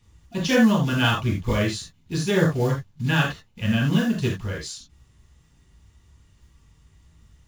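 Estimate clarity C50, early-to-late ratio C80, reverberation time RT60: 4.5 dB, 10.5 dB, no single decay rate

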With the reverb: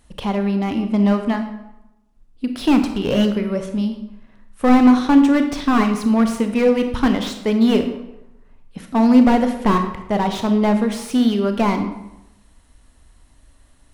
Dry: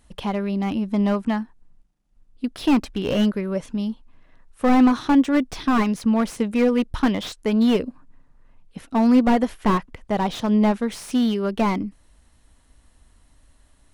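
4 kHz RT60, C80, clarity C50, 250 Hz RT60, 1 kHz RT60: 0.65 s, 10.5 dB, 8.5 dB, 0.90 s, 0.90 s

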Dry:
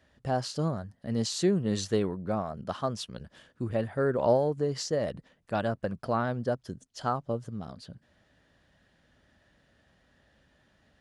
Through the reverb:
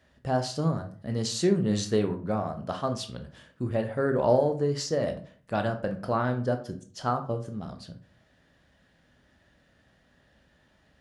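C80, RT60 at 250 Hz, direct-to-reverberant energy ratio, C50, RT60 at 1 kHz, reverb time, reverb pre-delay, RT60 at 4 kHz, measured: 16.5 dB, 0.50 s, 5.5 dB, 12.0 dB, 0.40 s, 0.45 s, 15 ms, 0.30 s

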